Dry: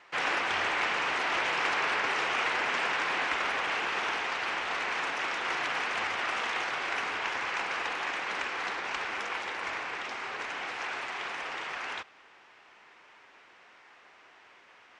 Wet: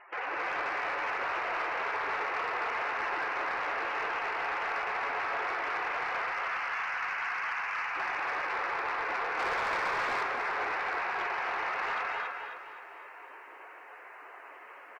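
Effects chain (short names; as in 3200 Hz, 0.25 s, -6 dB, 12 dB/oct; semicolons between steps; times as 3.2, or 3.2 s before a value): limiter -28.5 dBFS, peak gain reduction 10.5 dB; spectral gate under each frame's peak -10 dB strong; 6.21–7.96 HPF 1200 Hz 12 dB/oct; vocal rider; LPF 3200 Hz 12 dB/oct; high shelf 2300 Hz -11 dB; echo 0.272 s -6.5 dB; non-linear reverb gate 0.3 s rising, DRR 0 dB; 9.39–10.23 sample leveller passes 1; soft clip -32.5 dBFS, distortion -18 dB; lo-fi delay 0.258 s, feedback 55%, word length 12-bit, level -11 dB; gain +6.5 dB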